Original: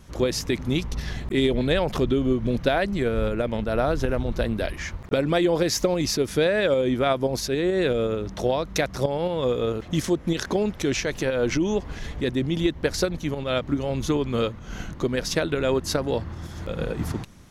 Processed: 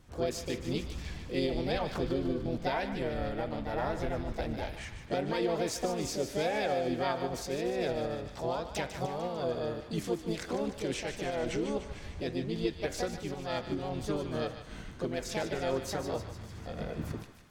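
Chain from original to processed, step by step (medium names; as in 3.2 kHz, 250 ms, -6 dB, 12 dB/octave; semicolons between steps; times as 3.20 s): treble shelf 5.1 kHz -4.5 dB; de-hum 96.4 Hz, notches 23; harmony voices +5 st -2 dB; flange 0.73 Hz, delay 7.3 ms, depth 7.4 ms, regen -84%; on a send: thinning echo 149 ms, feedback 66%, high-pass 980 Hz, level -9 dB; on the sum: trim -7 dB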